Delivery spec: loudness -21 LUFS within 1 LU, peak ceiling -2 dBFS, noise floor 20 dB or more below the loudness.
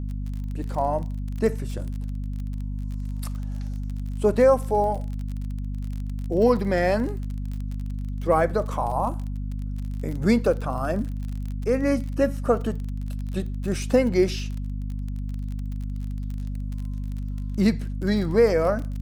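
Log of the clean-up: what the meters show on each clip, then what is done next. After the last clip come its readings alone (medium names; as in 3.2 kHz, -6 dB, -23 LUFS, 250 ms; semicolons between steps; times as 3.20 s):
tick rate 32 per s; hum 50 Hz; highest harmonic 250 Hz; hum level -27 dBFS; loudness -26.0 LUFS; peak level -7.5 dBFS; loudness target -21.0 LUFS
-> de-click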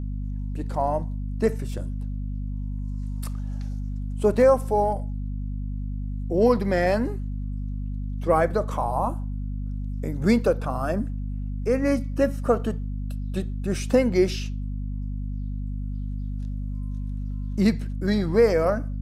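tick rate 0.053 per s; hum 50 Hz; highest harmonic 250 Hz; hum level -27 dBFS
-> de-hum 50 Hz, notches 5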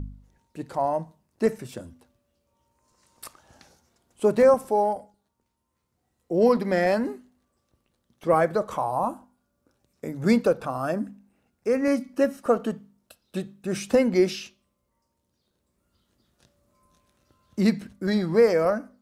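hum not found; loudness -24.5 LUFS; peak level -8.0 dBFS; loudness target -21.0 LUFS
-> trim +3.5 dB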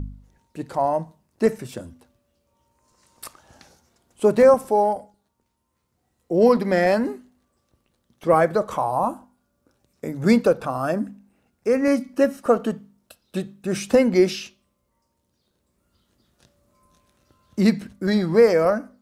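loudness -21.0 LUFS; peak level -4.5 dBFS; noise floor -72 dBFS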